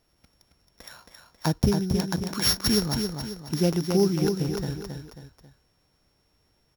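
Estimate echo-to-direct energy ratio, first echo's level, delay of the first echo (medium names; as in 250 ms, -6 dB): -4.5 dB, -5.5 dB, 271 ms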